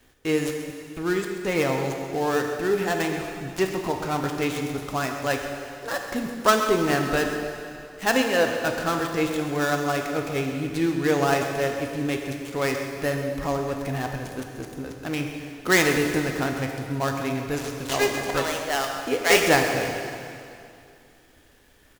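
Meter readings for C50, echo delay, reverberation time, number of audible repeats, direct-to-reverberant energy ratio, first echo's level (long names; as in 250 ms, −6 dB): 4.0 dB, 132 ms, 2.5 s, 1, 2.5 dB, −13.0 dB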